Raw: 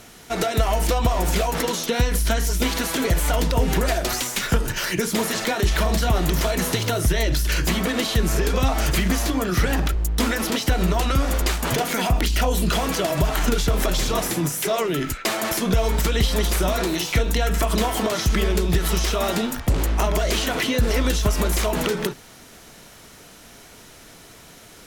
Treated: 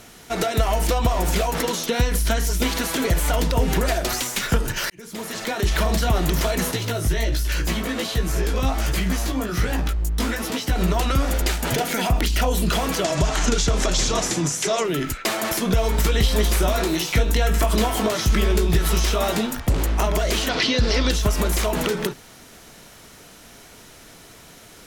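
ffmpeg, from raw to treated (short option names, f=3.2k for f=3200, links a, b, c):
-filter_complex "[0:a]asettb=1/sr,asplit=3[a][b][c];[a]atrim=end=6.714[d];[b]atrim=start=6.71:end=10.76,asetpts=PTS-STARTPTS,afade=t=in:d=0.004:c=qsin,afade=t=out:st=4.046:d=0.004:c=qsin,flanger=delay=15.5:depth=3.5:speed=1.3[e];[c]atrim=start=10.756[f];[d][e]acrossfade=d=0.004:c1=hsin:c2=qsin[g];[g][f]acrossfade=d=0.004:c1=qsin:c2=hsin,asettb=1/sr,asplit=3[h][i][j];[h]atrim=end=11.314[k];[i]atrim=start=11.31:end=12.05,asetpts=PTS-STARTPTS,afade=t=in:d=0.004:c=qsin,afade=t=out:st=0.736:d=0.004:c=qsin,bandreject=f=1.1k:w=5.5[l];[j]atrim=start=12.046[m];[k][l]acrossfade=d=0.004:c1=hsin:c2=qsin[n];[n][m]acrossfade=d=0.004:c1=qsin:c2=hsin,asettb=1/sr,asplit=3[o][p][q];[o]atrim=end=13.044[r];[p]atrim=start=13.04:end=14.84,asetpts=PTS-STARTPTS,afade=t=in:d=0.004:c=qsin,afade=t=out:st=1.796:d=0.004:c=qsin,lowpass=f=6.8k:t=q:w=2.2[s];[q]atrim=start=14.836[t];[r][s]acrossfade=d=0.004:c1=hsin:c2=qsin[u];[u][t]acrossfade=d=0.004:c1=qsin:c2=hsin,asettb=1/sr,asplit=3[v][w][x];[v]atrim=end=15.964[y];[w]atrim=start=15.96:end=19.47,asetpts=PTS-STARTPTS,afade=t=in:d=0.004:c=qsin,afade=t=out:st=3.506:d=0.004:c=qsin,asplit=2[z][aa];[aa]adelay=19,volume=-9dB[ab];[z][ab]amix=inputs=2:normalize=0,atrim=end_sample=154791[ac];[x]atrim=start=19.466[ad];[y][ac]acrossfade=d=0.004:c1=hsin:c2=qsin[ae];[ae][ad]acrossfade=d=0.004:c1=qsin:c2=hsin,asettb=1/sr,asplit=3[af][ag][ah];[af]atrim=end=20.494[ai];[ag]atrim=start=20.49:end=21.11,asetpts=PTS-STARTPTS,afade=t=in:d=0.004:c=qsin,afade=t=out:st=0.616:d=0.004:c=qsin,lowpass=f=4.8k:t=q:w=3.3[aj];[ah]atrim=start=21.106[ak];[ai][aj]acrossfade=d=0.004:c1=hsin:c2=qsin[al];[al][ak]acrossfade=d=0.004:c1=qsin:c2=hsin,asplit=2[am][an];[am]atrim=end=4.9,asetpts=PTS-STARTPTS,afade=t=out:st=4.896:d=0.004:c=hsin[ao];[an]atrim=start=4.9,asetpts=PTS-STARTPTS,afade=t=in:d=0.86[ap];[ao][ap]concat=n=2:v=0:a=1"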